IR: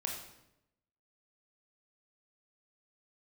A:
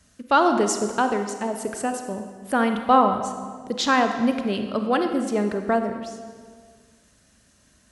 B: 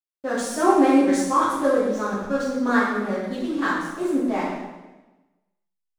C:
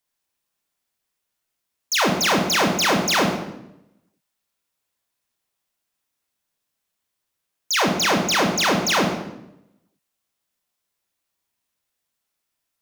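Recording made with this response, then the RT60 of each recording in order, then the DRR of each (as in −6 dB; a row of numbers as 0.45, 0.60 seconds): C; 1.7, 1.1, 0.85 seconds; 6.0, −8.5, −0.5 decibels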